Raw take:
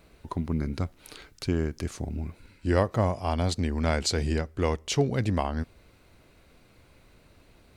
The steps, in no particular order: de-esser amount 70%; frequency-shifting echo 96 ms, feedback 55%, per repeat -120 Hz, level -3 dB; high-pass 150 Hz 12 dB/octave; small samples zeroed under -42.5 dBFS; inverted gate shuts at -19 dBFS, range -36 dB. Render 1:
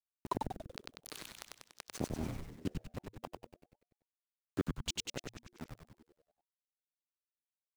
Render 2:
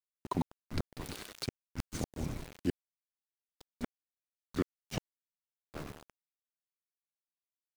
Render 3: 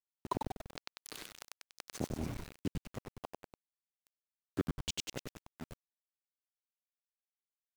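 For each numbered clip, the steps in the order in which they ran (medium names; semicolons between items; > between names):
inverted gate > high-pass > small samples zeroed > frequency-shifting echo > de-esser; high-pass > frequency-shifting echo > de-esser > inverted gate > small samples zeroed; inverted gate > high-pass > frequency-shifting echo > small samples zeroed > de-esser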